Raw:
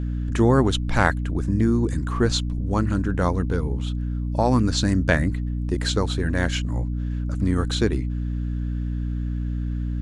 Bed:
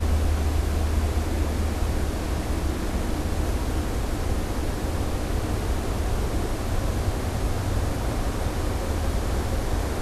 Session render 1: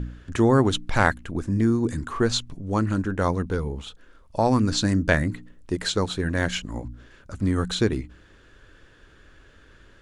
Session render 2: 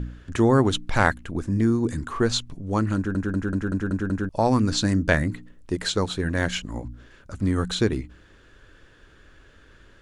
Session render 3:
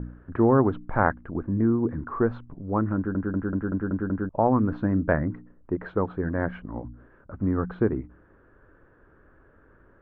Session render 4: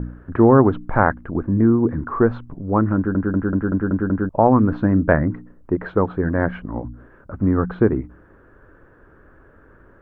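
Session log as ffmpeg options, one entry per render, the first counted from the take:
-af "bandreject=f=60:t=h:w=4,bandreject=f=120:t=h:w=4,bandreject=f=180:t=h:w=4,bandreject=f=240:t=h:w=4,bandreject=f=300:t=h:w=4"
-filter_complex "[0:a]asplit=8[s0][s1][s2][s3][s4][s5][s6][s7];[s0]atrim=end=3.152[s8];[s1]atrim=start=2.958:end=3.152[s9];[s2]atrim=start=2.958:end=3.152[s10];[s3]atrim=start=2.958:end=3.152[s11];[s4]atrim=start=2.958:end=3.152[s12];[s5]atrim=start=2.958:end=3.152[s13];[s6]atrim=start=2.958:end=3.152[s14];[s7]atrim=start=4.288[s15];[s8][s9]acrossfade=d=0.004:c1=hsin:c2=hsin[s16];[s16][s10]acrossfade=d=0.004:c1=hsin:c2=hsin[s17];[s17][s11]acrossfade=d=0.004:c1=hsin:c2=hsin[s18];[s18][s12]acrossfade=d=0.004:c1=hsin:c2=hsin[s19];[s19][s13]acrossfade=d=0.004:c1=hsin:c2=hsin[s20];[s20][s14]acrossfade=d=0.004:c1=hsin:c2=hsin[s21];[s21][s15]acrossfade=d=0.004:c1=hsin:c2=hsin"
-af "lowpass=f=1400:w=0.5412,lowpass=f=1400:w=1.3066,lowshelf=f=100:g=-7.5"
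-af "volume=2.24,alimiter=limit=0.891:level=0:latency=1"

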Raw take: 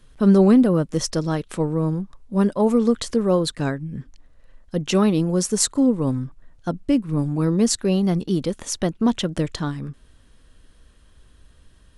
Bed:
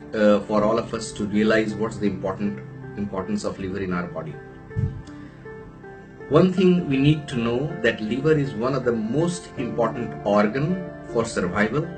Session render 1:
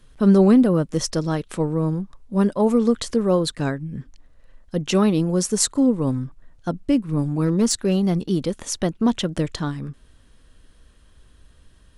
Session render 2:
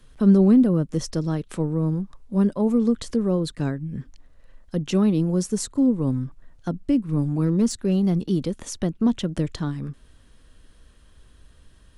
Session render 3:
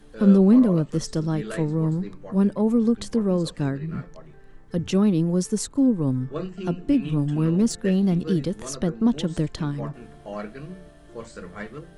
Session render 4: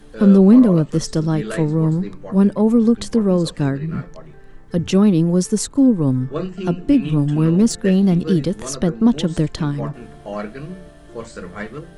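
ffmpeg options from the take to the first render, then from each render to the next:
-filter_complex "[0:a]asettb=1/sr,asplit=3[s0][s1][s2];[s0]atrim=end=7.424[s3];[s1]atrim=start=7.42:end=8.17,asetpts=PTS-STARTPTS,afade=t=in:d=0.004:c=qsin,afade=t=out:st=0.746:d=0.004:c=qsin,volume=3.98,asoftclip=hard,volume=0.251[s4];[s2]atrim=start=8.166[s5];[s3][s4]acrossfade=d=0.004:c1=hsin:c2=qsin[s6];[s6][s5]acrossfade=d=0.004:c1=qsin:c2=hsin"
-filter_complex "[0:a]acrossover=split=360[s0][s1];[s1]acompressor=threshold=0.0141:ratio=2[s2];[s0][s2]amix=inputs=2:normalize=0"
-filter_complex "[1:a]volume=0.178[s0];[0:a][s0]amix=inputs=2:normalize=0"
-af "volume=2,alimiter=limit=0.708:level=0:latency=1"

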